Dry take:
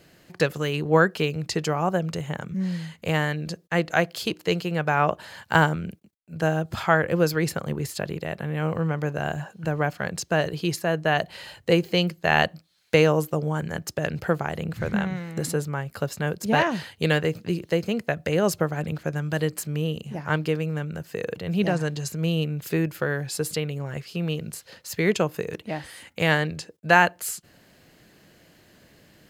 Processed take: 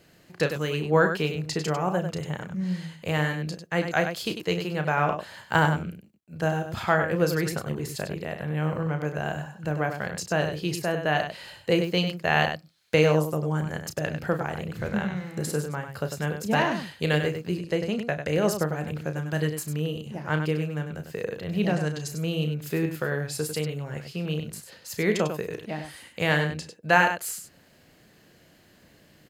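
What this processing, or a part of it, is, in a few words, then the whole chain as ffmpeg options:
slapback doubling: -filter_complex "[0:a]asplit=3[link_01][link_02][link_03];[link_02]adelay=33,volume=-9dB[link_04];[link_03]adelay=98,volume=-8dB[link_05];[link_01][link_04][link_05]amix=inputs=3:normalize=0,asettb=1/sr,asplit=3[link_06][link_07][link_08];[link_06]atrim=end=17.584[link_09];[link_07]atrim=start=17.58:end=18.27,asetpts=PTS-STARTPTS,afade=type=in:duration=0.004:curve=qsin,afade=type=out:start_time=0.686:duration=0.004:curve=qsin,lowpass=frequency=12000:width=0.5412,lowpass=frequency=12000:width=1.3066[link_10];[link_08]atrim=start=18.266[link_11];[link_09][link_10]acrossfade=duration=0.004:curve1=hsin:curve2=qsin[link_12];[link_12][link_11]acrossfade=duration=0.004:curve1=qsin:curve2=hsin,volume=-3dB"

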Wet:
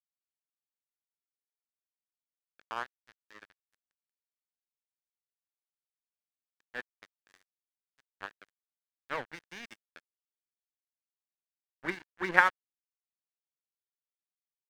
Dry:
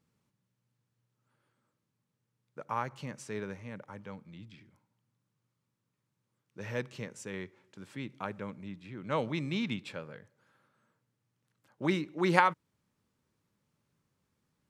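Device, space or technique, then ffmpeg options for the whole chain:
pocket radio on a weak battery: -af "highpass=260,lowpass=3000,aeval=exprs='sgn(val(0))*max(abs(val(0))-0.0211,0)':channel_layout=same,equalizer=frequency=1700:width_type=o:width=0.57:gain=11.5,volume=-1.5dB"

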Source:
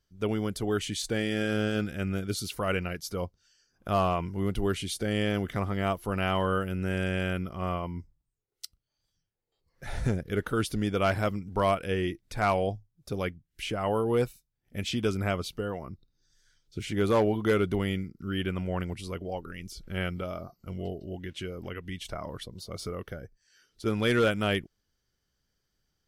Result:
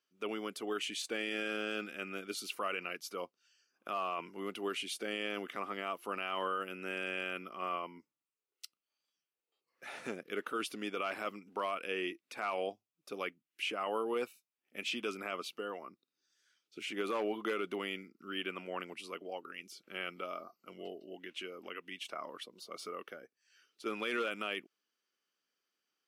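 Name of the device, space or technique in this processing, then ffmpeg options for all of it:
laptop speaker: -af "highpass=frequency=260:width=0.5412,highpass=frequency=260:width=1.3066,equalizer=frequency=1200:width_type=o:width=0.39:gain=8,equalizer=frequency=2600:width_type=o:width=0.51:gain=10.5,alimiter=limit=-18dB:level=0:latency=1:release=23,volume=-7.5dB"

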